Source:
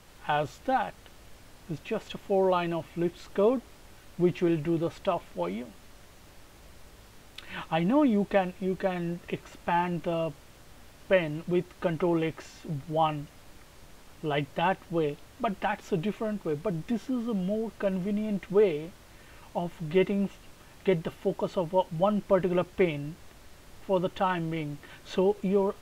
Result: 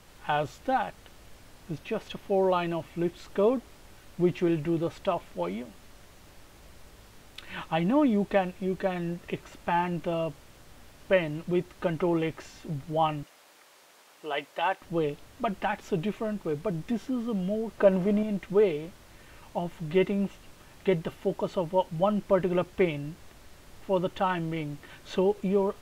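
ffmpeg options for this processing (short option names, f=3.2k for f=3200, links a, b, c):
-filter_complex "[0:a]asettb=1/sr,asplit=3[a][b][c];[a]atrim=end=1.754[d];[b]atrim=start=1.75:end=2.38,asetpts=PTS-STARTPTS,afade=t=in:d=0.004:c=qsin,afade=t=out:st=0.626:d=0.004:c=qsin,bandreject=f=7.3k:w=9.3[e];[c]atrim=start=2.376[f];[d][e]acrossfade=d=0.004:c1=hsin:c2=qsin[g];[g][f]acrossfade=d=0.004:c1=qsin:c2=hsin,asettb=1/sr,asplit=3[h][i][j];[h]atrim=end=13.234[k];[i]atrim=start=13.23:end=14.82,asetpts=PTS-STARTPTS,afade=t=in:d=0.004:c=qsin,afade=t=out:st=1.586:d=0.004:c=qsin,highpass=510[l];[j]atrim=start=14.816[m];[k][l]acrossfade=d=0.004:c1=hsin:c2=qsin[n];[n][m]acrossfade=d=0.004:c1=qsin:c2=hsin,asettb=1/sr,asplit=3[o][p][q];[o]atrim=end=17.784[r];[p]atrim=start=17.78:end=18.23,asetpts=PTS-STARTPTS,afade=t=in:d=0.004:c=qsin,afade=t=out:st=0.446:d=0.004:c=qsin,equalizer=f=650:t=o:w=2.9:g=9[s];[q]atrim=start=18.226[t];[r][s]acrossfade=d=0.004:c1=hsin:c2=qsin[u];[u][t]acrossfade=d=0.004:c1=qsin:c2=hsin"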